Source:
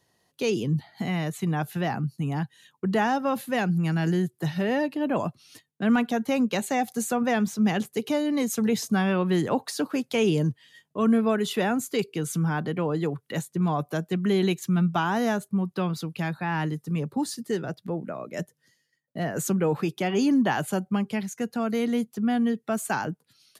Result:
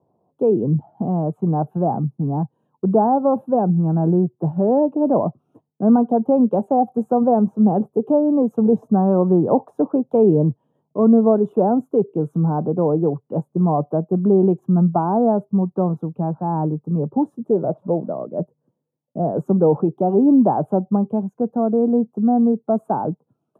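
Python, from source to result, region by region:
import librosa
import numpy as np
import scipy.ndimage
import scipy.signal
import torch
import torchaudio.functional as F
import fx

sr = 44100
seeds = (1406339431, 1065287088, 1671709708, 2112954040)

y = fx.chain(x, sr, fx.crossing_spikes(level_db=-32.0),
    fx.lowpass(hz=4800.0, slope=12),
    fx.peak_eq(hz=600.0, db=7.0, octaves=0.39), at=(17.47, 18.09))
y = scipy.signal.sosfilt(scipy.signal.butter(2, 120.0, 'highpass', fs=sr, output='sos'), y)
y = fx.dynamic_eq(y, sr, hz=580.0, q=1.1, threshold_db=-34.0, ratio=4.0, max_db=3)
y = scipy.signal.sosfilt(scipy.signal.cheby2(4, 40, 1800.0, 'lowpass', fs=sr, output='sos'), y)
y = y * librosa.db_to_amplitude(7.5)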